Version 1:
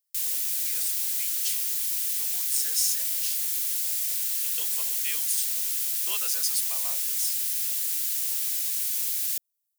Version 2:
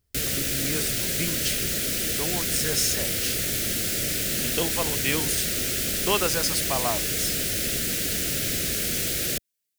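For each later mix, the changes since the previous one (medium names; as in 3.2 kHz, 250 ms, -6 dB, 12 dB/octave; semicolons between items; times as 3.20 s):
background +3.0 dB; master: remove differentiator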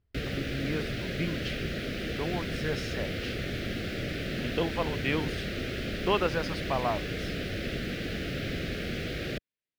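master: add distance through air 350 m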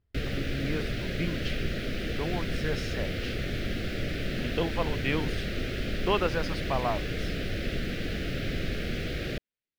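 background: remove high-pass 75 Hz 6 dB/octave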